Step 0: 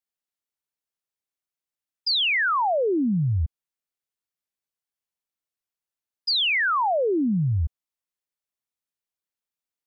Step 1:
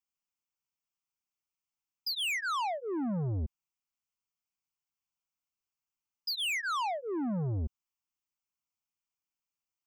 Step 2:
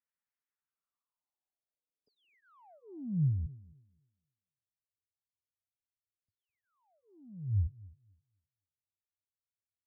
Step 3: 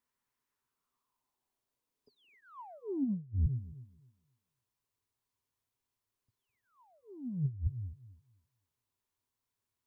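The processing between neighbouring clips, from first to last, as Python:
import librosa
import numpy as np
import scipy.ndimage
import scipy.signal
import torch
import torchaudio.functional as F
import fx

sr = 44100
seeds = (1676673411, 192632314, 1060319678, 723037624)

y1 = fx.fixed_phaser(x, sr, hz=2600.0, stages=8)
y1 = 10.0 ** (-30.5 / 20.0) * np.tanh(y1 / 10.0 ** (-30.5 / 20.0))
y2 = fx.filter_sweep_lowpass(y1, sr, from_hz=1800.0, to_hz=100.0, start_s=0.52, end_s=3.64, q=4.5)
y2 = fx.echo_tape(y2, sr, ms=260, feedback_pct=27, wet_db=-17.5, lp_hz=1200.0, drive_db=10.0, wow_cents=16)
y2 = y2 * 10.0 ** (-7.0 / 20.0)
y3 = fx.graphic_eq_31(y2, sr, hz=(125, 250, 400, 1000), db=(8, 9, 8, 10))
y3 = fx.over_compress(y3, sr, threshold_db=-34.0, ratio=-0.5)
y3 = fx.low_shelf(y3, sr, hz=64.0, db=8.0)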